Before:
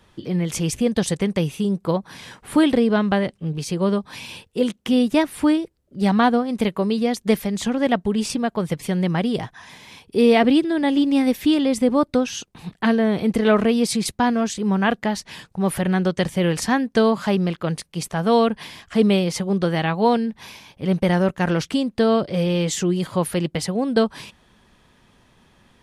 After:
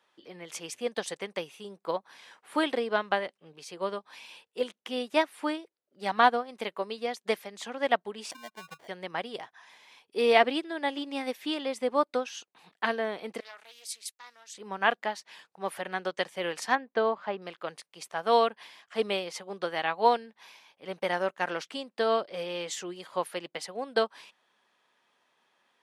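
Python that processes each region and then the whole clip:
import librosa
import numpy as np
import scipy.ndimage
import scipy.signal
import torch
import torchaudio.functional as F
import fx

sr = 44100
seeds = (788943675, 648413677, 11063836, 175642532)

y = fx.chain(x, sr, fx.spec_expand(power=1.8),
    fx.band_shelf(hz=550.0, db=-9.0, octaves=2.6),
    fx.sample_hold(seeds[0], rate_hz=1300.0, jitter_pct=0), at=(8.31, 8.88))
y = fx.chain(y, sr, fx.highpass(hz=190.0, slope=12),
    fx.differentiator(),
    fx.doppler_dist(depth_ms=0.29), at=(13.4, 14.54))
y = fx.chain(y, sr, fx.lowpass(hz=4200.0, slope=12),
    fx.high_shelf(hz=2500.0, db=-11.5), at=(16.75, 17.42))
y = scipy.signal.sosfilt(scipy.signal.butter(2, 590.0, 'highpass', fs=sr, output='sos'), y)
y = fx.high_shelf(y, sr, hz=6200.0, db=-7.5)
y = fx.upward_expand(y, sr, threshold_db=-37.0, expansion=1.5)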